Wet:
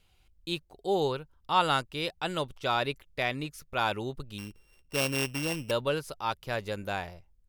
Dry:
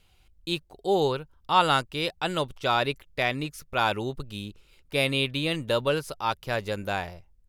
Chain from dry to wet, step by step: 4.38–5.71 sample sorter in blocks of 16 samples; gain -4 dB

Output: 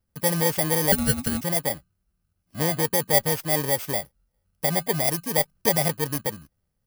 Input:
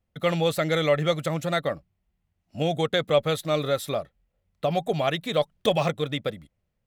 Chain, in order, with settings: FFT order left unsorted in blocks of 32 samples; 0.92–1.41 frequency shift -390 Hz; gain +1 dB

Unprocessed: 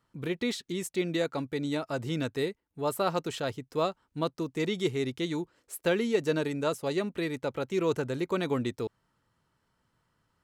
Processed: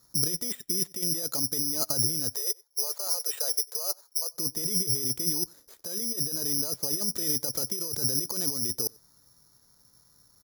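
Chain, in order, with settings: tape spacing loss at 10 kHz 33 dB; negative-ratio compressor -38 dBFS, ratio -1; careless resampling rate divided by 8×, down filtered, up zero stuff; 2.34–4.34 steep high-pass 420 Hz 48 dB/oct; outdoor echo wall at 16 m, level -26 dB

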